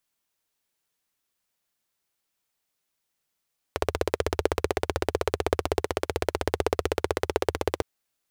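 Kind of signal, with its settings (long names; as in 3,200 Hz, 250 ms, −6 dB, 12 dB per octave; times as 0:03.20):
pulse-train model of a single-cylinder engine, steady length 4.06 s, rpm 1,900, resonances 81/420 Hz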